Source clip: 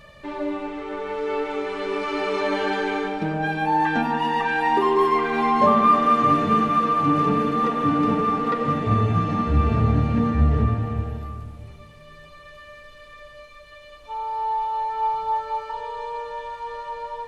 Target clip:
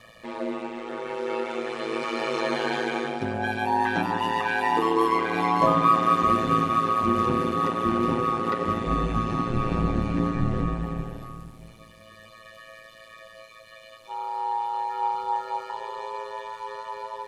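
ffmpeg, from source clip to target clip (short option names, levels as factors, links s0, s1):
-af "highpass=91,aeval=exprs='val(0)*sin(2*PI*56*n/s)':c=same,aemphasis=mode=production:type=cd"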